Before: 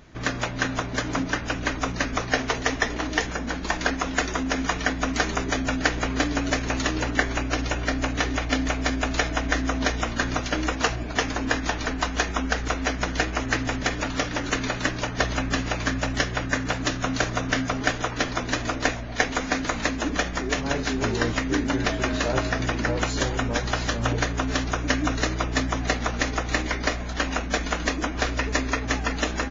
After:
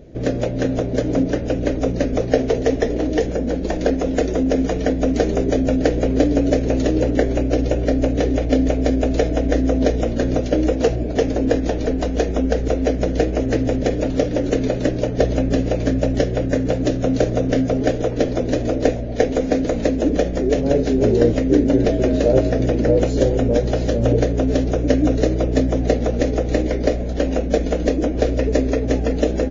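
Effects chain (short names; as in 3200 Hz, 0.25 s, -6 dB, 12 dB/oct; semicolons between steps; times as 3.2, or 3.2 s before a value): resonant low shelf 750 Hz +12.5 dB, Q 3; gain -5 dB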